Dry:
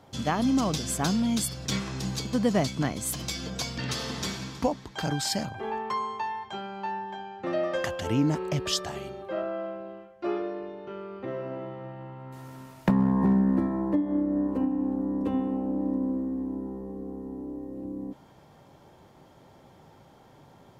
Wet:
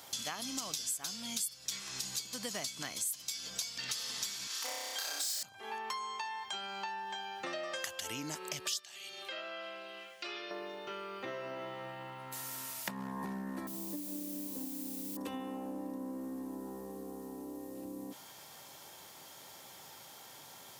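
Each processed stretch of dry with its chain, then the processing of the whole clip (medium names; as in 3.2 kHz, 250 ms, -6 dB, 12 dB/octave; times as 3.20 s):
4.47–5.43 s: Bessel high-pass 570 Hz, order 8 + hard clipper -28.5 dBFS + flutter echo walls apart 5.3 m, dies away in 1.4 s
8.79–10.51 s: frequency weighting D + compression 2:1, threshold -47 dBFS
13.67–15.17 s: band-pass filter 160 Hz, Q 0.78 + word length cut 10-bit, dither triangular
whole clip: high-pass 68 Hz; pre-emphasis filter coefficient 0.97; compression 5:1, threshold -56 dBFS; trim +18 dB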